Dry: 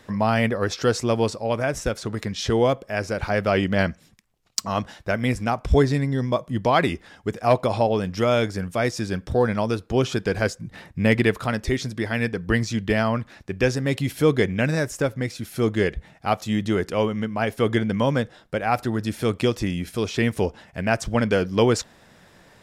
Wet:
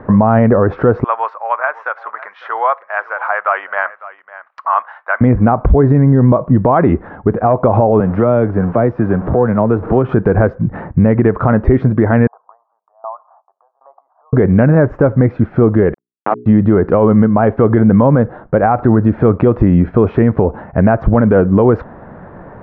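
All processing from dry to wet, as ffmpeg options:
ffmpeg -i in.wav -filter_complex "[0:a]asettb=1/sr,asplit=3[link_01][link_02][link_03];[link_01]atrim=end=1.044[link_04];[link_02]atrim=start=1.04:end=5.21,asetpts=PTS-STARTPTS,afade=type=in:duration=0.004:curve=qsin,afade=type=out:start_time=4.166:duration=0.004:curve=qsin,highpass=frequency=1000:width=0.5412,highpass=frequency=1000:width=1.3066,aecho=1:1:553:0.119,atrim=end_sample=183897[link_05];[link_03]atrim=start=5.206[link_06];[link_04][link_05]acrossfade=duration=0.004:curve1=hsin:curve2=qsin[link_07];[link_07][link_06]acrossfade=duration=0.004:curve1=qsin:curve2=hsin,asettb=1/sr,asplit=3[link_08][link_09][link_10];[link_08]atrim=end=8.004[link_11];[link_09]atrim=start=8:end=10.09,asetpts=PTS-STARTPTS,afade=type=in:duration=0.004:curve=qsin,afade=type=out:start_time=2.086:duration=0.004:curve=qsin,aeval=exprs='val(0)+0.5*0.02*sgn(val(0))':channel_layout=same,acrossover=split=150|590|3100[link_12][link_13][link_14][link_15];[link_12]acompressor=threshold=-43dB:ratio=3[link_16];[link_13]acompressor=threshold=-34dB:ratio=3[link_17];[link_14]acompressor=threshold=-39dB:ratio=3[link_18];[link_15]acompressor=threshold=-49dB:ratio=3[link_19];[link_16][link_17][link_18][link_19]amix=inputs=4:normalize=0[link_20];[link_10]atrim=start=10.086[link_21];[link_11][link_20]acrossfade=duration=0.004:curve1=hsin:curve2=qsin[link_22];[link_22][link_21]acrossfade=duration=0.004:curve1=qsin:curve2=hsin,asettb=1/sr,asplit=3[link_23][link_24][link_25];[link_23]atrim=end=12.274[link_26];[link_24]atrim=start=12.27:end=14.33,asetpts=PTS-STARTPTS,afade=type=in:duration=0.004:curve=qsin,afade=type=out:start_time=2.056:duration=0.004:curve=qsin,acompressor=threshold=-32dB:ratio=20:attack=3.2:release=140:knee=1:detection=peak,asuperpass=centerf=890:order=8:qfactor=1.7,aeval=exprs='val(0)*pow(10,-24*if(lt(mod(1.3*n/s,1),2*abs(1.3)/1000),1-mod(1.3*n/s,1)/(2*abs(1.3)/1000),(mod(1.3*n/s,1)-2*abs(1.3)/1000)/(1-2*abs(1.3)/1000))/20)':channel_layout=same[link_27];[link_25]atrim=start=14.326[link_28];[link_26][link_27]acrossfade=duration=0.004:curve1=hsin:curve2=qsin[link_29];[link_29][link_28]acrossfade=duration=0.004:curve1=qsin:curve2=hsin,asettb=1/sr,asplit=3[link_30][link_31][link_32];[link_30]atrim=end=15.944[link_33];[link_31]atrim=start=15.94:end=16.46,asetpts=PTS-STARTPTS,afade=type=in:duration=0.004:curve=qsin,afade=type=out:start_time=0.516:duration=0.004:curve=qsin,acrusher=bits=2:mix=0:aa=0.5,highpass=frequency=150:width=0.5412,highpass=frequency=150:width=1.3066,bandreject=frequency=60:width_type=h:width=6,bandreject=frequency=120:width_type=h:width=6,bandreject=frequency=180:width_type=h:width=6,bandreject=frequency=240:width_type=h:width=6,bandreject=frequency=300:width_type=h:width=6,bandreject=frequency=360:width_type=h:width=6,bandreject=frequency=420:width_type=h:width=6[link_34];[link_32]atrim=start=16.456[link_35];[link_33][link_34]acrossfade=duration=0.004:curve1=hsin:curve2=qsin[link_36];[link_36][link_35]acrossfade=duration=0.004:curve1=qsin:curve2=hsin,acompressor=threshold=-21dB:ratio=6,lowpass=frequency=1300:width=0.5412,lowpass=frequency=1300:width=1.3066,alimiter=level_in=20.5dB:limit=-1dB:release=50:level=0:latency=1,volume=-1dB" out.wav

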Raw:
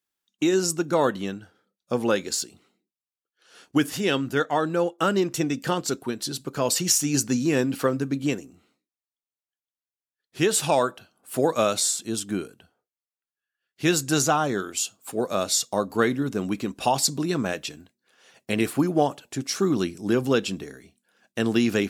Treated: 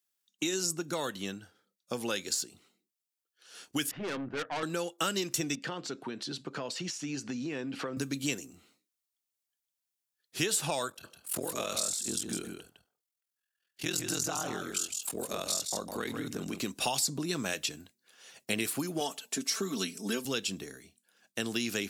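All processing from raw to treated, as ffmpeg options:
ffmpeg -i in.wav -filter_complex "[0:a]asettb=1/sr,asplit=3[link_01][link_02][link_03];[link_01]atrim=end=3.914[link_04];[link_02]atrim=start=3.91:end=4.63,asetpts=PTS-STARTPTS,afade=type=in:duration=0.004:curve=qsin,afade=type=out:start_time=0.716:duration=0.004:curve=qsin,lowpass=frequency=2000:width=0.5412,lowpass=frequency=2000:width=1.3066,bandreject=frequency=60:width_type=h:width=6,bandreject=frequency=120:width_type=h:width=6,bandreject=frequency=180:width_type=h:width=6,aeval=exprs='(tanh(22.4*val(0)+0.55)-tanh(0.55))/22.4':channel_layout=same[link_05];[link_03]atrim=start=4.626[link_06];[link_04][link_05]acrossfade=duration=0.004:curve1=hsin:curve2=qsin[link_07];[link_07][link_06]acrossfade=duration=0.004:curve1=qsin:curve2=hsin,asettb=1/sr,asplit=3[link_08][link_09][link_10];[link_08]atrim=end=5.554[link_11];[link_09]atrim=start=5.55:end=7.97,asetpts=PTS-STARTPTS,afade=type=in:duration=0.004:curve=qsin,afade=type=out:start_time=2.416:duration=0.004:curve=qsin,acompressor=threshold=-31dB:ratio=4:attack=3.2:release=140:knee=1:detection=peak,highpass=140,lowpass=3100[link_12];[link_10]atrim=start=7.966[link_13];[link_11][link_12]acrossfade=duration=0.004:curve1=hsin:curve2=qsin[link_14];[link_14][link_13]acrossfade=duration=0.004:curve1=qsin:curve2=hsin,asettb=1/sr,asplit=3[link_15][link_16][link_17];[link_15]atrim=end=10.884[link_18];[link_16]atrim=start=10.88:end=16.59,asetpts=PTS-STARTPTS,afade=type=in:duration=0.004:curve=qsin,afade=type=out:start_time=5.706:duration=0.004:curve=qsin,aeval=exprs='val(0)*sin(2*PI*21*n/s)':channel_layout=same,acompressor=threshold=-32dB:ratio=2:attack=3.2:release=140:knee=1:detection=peak,aecho=1:1:156:0.447,atrim=end_sample=251811[link_19];[link_17]atrim=start=16.586[link_20];[link_18][link_19]acrossfade=duration=0.004:curve1=hsin:curve2=qsin[link_21];[link_21][link_20]acrossfade=duration=0.004:curve1=qsin:curve2=hsin,asettb=1/sr,asplit=3[link_22][link_23][link_24];[link_22]atrim=end=19.004[link_25];[link_23]atrim=start=19:end=20.25,asetpts=PTS-STARTPTS,afade=type=in:duration=0.004:curve=qsin,afade=type=out:start_time=1.246:duration=0.004:curve=qsin,highpass=200,aecho=1:1:4.5:0.9,atrim=end_sample=55125[link_26];[link_24]atrim=start=20.246[link_27];[link_25][link_26]acrossfade=duration=0.004:curve1=hsin:curve2=qsin[link_28];[link_28][link_27]acrossfade=duration=0.004:curve1=qsin:curve2=hsin,dynaudnorm=framelen=600:gausssize=13:maxgain=5.5dB,highshelf=frequency=2900:gain=10.5,acrossover=split=95|2000[link_29][link_30][link_31];[link_29]acompressor=threshold=-53dB:ratio=4[link_32];[link_30]acompressor=threshold=-26dB:ratio=4[link_33];[link_31]acompressor=threshold=-24dB:ratio=4[link_34];[link_32][link_33][link_34]amix=inputs=3:normalize=0,volume=-6.5dB" out.wav

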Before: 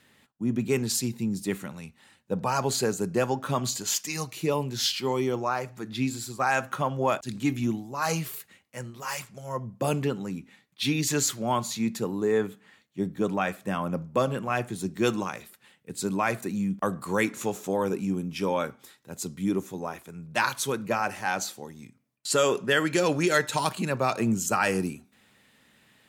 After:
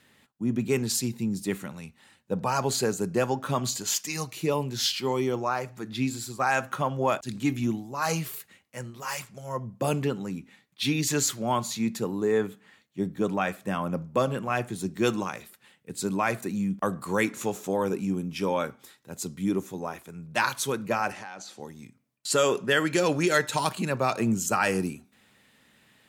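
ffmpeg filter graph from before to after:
ffmpeg -i in.wav -filter_complex "[0:a]asettb=1/sr,asplit=3[link_01][link_02][link_03];[link_01]atrim=end=21.124[link_04];[link_02]atrim=start=21.12:end=21.6,asetpts=PTS-STARTPTS,afade=type=in:duration=0.004:curve=qsin,afade=type=out:start_time=0.476:duration=0.004:curve=qsin,acompressor=threshold=-36dB:ratio=10:attack=3.2:release=140:knee=1:detection=peak,highpass=130,lowpass=7000[link_05];[link_03]atrim=start=21.596[link_06];[link_04][link_05]acrossfade=duration=0.004:curve1=hsin:curve2=qsin[link_07];[link_07][link_06]acrossfade=duration=0.004:curve1=qsin:curve2=hsin" out.wav

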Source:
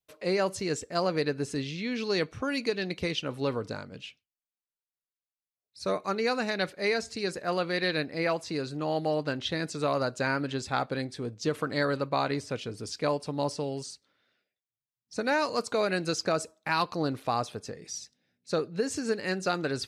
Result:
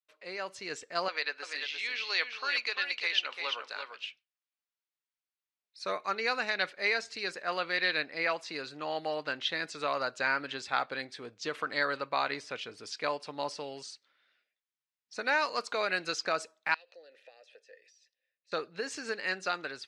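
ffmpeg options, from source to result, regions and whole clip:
ffmpeg -i in.wav -filter_complex "[0:a]asettb=1/sr,asplit=3[link_01][link_02][link_03];[link_01]atrim=end=1.084[link_04];[link_02]atrim=start=1.08:end=4.05,asetpts=PTS-STARTPTS,afade=type=in:duration=0.004:curve=qsin,afade=type=out:start_time=2.966:duration=0.004:curve=qsin,highpass=690,lowpass=3900,aemphasis=mode=production:type=75fm,aecho=1:1:344:0.473,atrim=end_sample=130977[link_05];[link_03]atrim=start=4.046[link_06];[link_04][link_05]acrossfade=duration=0.004:curve1=hsin:curve2=qsin[link_07];[link_07][link_06]acrossfade=duration=0.004:curve1=qsin:curve2=hsin,asettb=1/sr,asplit=3[link_08][link_09][link_10];[link_08]atrim=end=16.744[link_11];[link_09]atrim=start=16.74:end=18.52,asetpts=PTS-STARTPTS,afade=type=in:duration=0.004:curve=qsin,afade=type=out:start_time=1.776:duration=0.004:curve=qsin,bass=frequency=250:gain=-12,treble=frequency=4000:gain=15,acompressor=threshold=-34dB:ratio=5:attack=3.2:release=140:knee=1:detection=peak,asplit=3[link_12][link_13][link_14];[link_12]bandpass=frequency=530:width_type=q:width=8,volume=0dB[link_15];[link_13]bandpass=frequency=1840:width_type=q:width=8,volume=-6dB[link_16];[link_14]bandpass=frequency=2480:width_type=q:width=8,volume=-9dB[link_17];[link_15][link_16][link_17]amix=inputs=3:normalize=0[link_18];[link_10]atrim=start=18.516[link_19];[link_11][link_18]acrossfade=duration=0.004:curve1=hsin:curve2=qsin[link_20];[link_20][link_19]acrossfade=duration=0.004:curve1=qsin:curve2=hsin,lowpass=2200,aderivative,dynaudnorm=framelen=260:gausssize=5:maxgain=9dB,volume=7dB" out.wav

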